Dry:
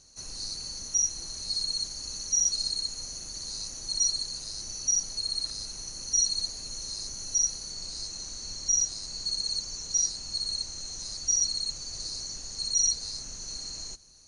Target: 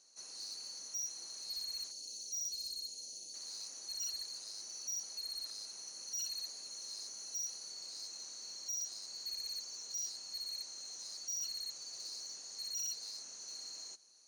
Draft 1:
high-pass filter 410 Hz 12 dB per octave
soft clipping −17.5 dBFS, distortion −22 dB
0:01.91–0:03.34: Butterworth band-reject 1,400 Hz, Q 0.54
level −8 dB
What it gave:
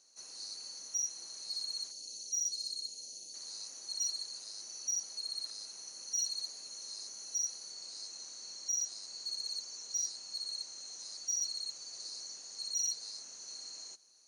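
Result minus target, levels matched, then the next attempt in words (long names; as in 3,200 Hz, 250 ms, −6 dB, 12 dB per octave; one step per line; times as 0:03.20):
soft clipping: distortion −14 dB
high-pass filter 410 Hz 12 dB per octave
soft clipping −28.5 dBFS, distortion −8 dB
0:01.91–0:03.34: Butterworth band-reject 1,400 Hz, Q 0.54
level −8 dB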